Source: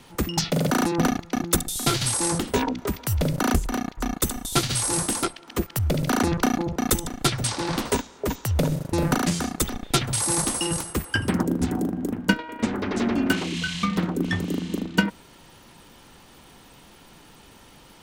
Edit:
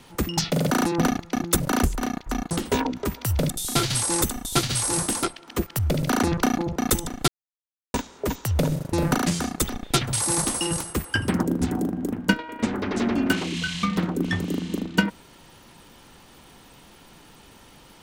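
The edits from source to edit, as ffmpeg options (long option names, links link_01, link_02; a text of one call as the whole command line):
ffmpeg -i in.wav -filter_complex "[0:a]asplit=7[link_01][link_02][link_03][link_04][link_05][link_06][link_07];[link_01]atrim=end=1.602[link_08];[link_02]atrim=start=3.308:end=4.222[link_09];[link_03]atrim=start=2.328:end=3.312[link_10];[link_04]atrim=start=1.598:end=2.332[link_11];[link_05]atrim=start=4.218:end=7.28,asetpts=PTS-STARTPTS,afade=type=out:start_time=3.058:duration=0.004:curve=hsin[link_12];[link_06]atrim=start=7.28:end=7.94,asetpts=PTS-STARTPTS,volume=0[link_13];[link_07]atrim=start=7.94,asetpts=PTS-STARTPTS,afade=type=in:duration=0.004:curve=hsin[link_14];[link_08][link_09]acrossfade=duration=0.004:curve1=hsin:curve2=hsin[link_15];[link_15][link_10]acrossfade=duration=0.004:curve1=hsin:curve2=hsin[link_16];[link_16][link_11]acrossfade=duration=0.004:curve1=hsin:curve2=hsin[link_17];[link_12][link_13][link_14]concat=n=3:v=0:a=1[link_18];[link_17][link_18]acrossfade=duration=0.004:curve1=hsin:curve2=hsin" out.wav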